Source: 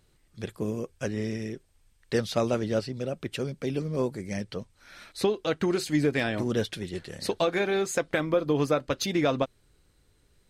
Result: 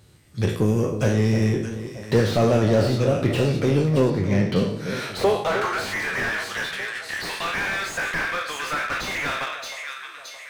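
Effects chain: spectral trails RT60 0.45 s; recorder AGC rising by 6.9 dB/s; 6.44–7.09 expander -24 dBFS; high-pass sweep 91 Hz -> 1700 Hz, 4.29–5.86; de-hum 82.22 Hz, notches 37; in parallel at -5 dB: overloaded stage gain 30.5 dB; 4.1–4.56 on the sum: air absorption 180 m; echo with dull and thin repeats by turns 0.31 s, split 960 Hz, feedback 69%, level -9.5 dB; slew limiter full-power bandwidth 62 Hz; gain +5 dB

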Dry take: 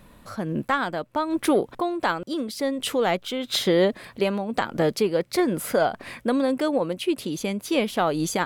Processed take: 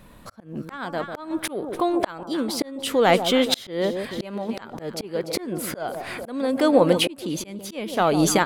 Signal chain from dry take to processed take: echo with dull and thin repeats by turns 0.147 s, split 1000 Hz, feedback 62%, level -11.5 dB; AGC gain up to 13 dB; auto swell 0.791 s; gain +1.5 dB

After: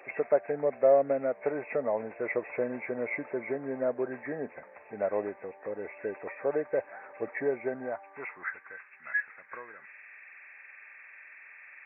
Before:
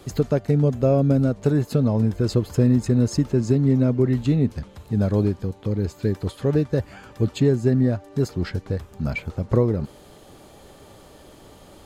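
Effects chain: nonlinear frequency compression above 1500 Hz 4:1; high-pass sweep 620 Hz -> 1700 Hz, 7.63–8.95; gain -5.5 dB

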